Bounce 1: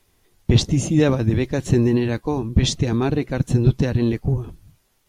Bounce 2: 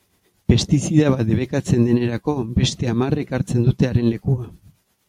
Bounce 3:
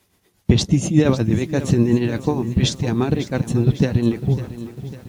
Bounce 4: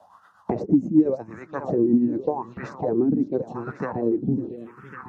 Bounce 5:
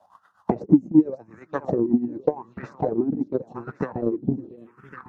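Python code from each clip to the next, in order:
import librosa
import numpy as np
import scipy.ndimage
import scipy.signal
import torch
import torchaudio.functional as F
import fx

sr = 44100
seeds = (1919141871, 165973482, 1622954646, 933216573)

y1 = scipy.signal.sosfilt(scipy.signal.butter(2, 64.0, 'highpass', fs=sr, output='sos'), x)
y1 = fx.peak_eq(y1, sr, hz=190.0, db=7.0, octaves=0.26)
y1 = fx.tremolo_shape(y1, sr, shape='triangle', hz=8.4, depth_pct=65)
y1 = y1 * 10.0 ** (3.5 / 20.0)
y2 = fx.echo_crushed(y1, sr, ms=551, feedback_pct=55, bits=7, wet_db=-13.5)
y3 = fx.env_phaser(y2, sr, low_hz=380.0, high_hz=3300.0, full_db=-16.0)
y3 = fx.wah_lfo(y3, sr, hz=0.87, low_hz=250.0, high_hz=1400.0, q=6.5)
y3 = fx.band_squash(y3, sr, depth_pct=70)
y3 = y3 * 10.0 ** (7.5 / 20.0)
y4 = fx.transient(y3, sr, attack_db=11, sustain_db=-4)
y4 = y4 * 10.0 ** (-6.0 / 20.0)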